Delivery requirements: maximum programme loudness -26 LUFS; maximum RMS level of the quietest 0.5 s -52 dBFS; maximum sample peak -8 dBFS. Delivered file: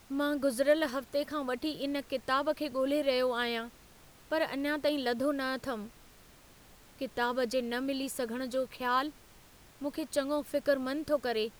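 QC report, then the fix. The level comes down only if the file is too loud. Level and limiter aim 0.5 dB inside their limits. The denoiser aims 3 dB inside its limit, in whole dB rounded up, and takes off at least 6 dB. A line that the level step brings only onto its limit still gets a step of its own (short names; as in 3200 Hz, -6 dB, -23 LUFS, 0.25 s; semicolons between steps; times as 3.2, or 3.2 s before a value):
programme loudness -32.5 LUFS: OK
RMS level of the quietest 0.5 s -57 dBFS: OK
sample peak -15.0 dBFS: OK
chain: none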